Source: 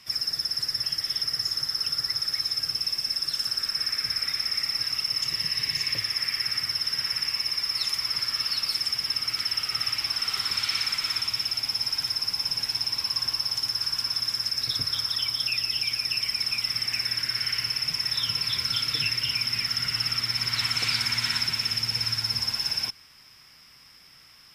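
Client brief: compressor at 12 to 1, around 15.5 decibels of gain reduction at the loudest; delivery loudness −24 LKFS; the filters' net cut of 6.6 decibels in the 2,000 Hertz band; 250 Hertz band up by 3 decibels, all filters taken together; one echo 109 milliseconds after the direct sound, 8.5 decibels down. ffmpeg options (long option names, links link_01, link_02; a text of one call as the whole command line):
ffmpeg -i in.wav -af "equalizer=frequency=250:width_type=o:gain=4,equalizer=frequency=2000:width_type=o:gain=-8.5,acompressor=threshold=-40dB:ratio=12,aecho=1:1:109:0.376,volume=16.5dB" out.wav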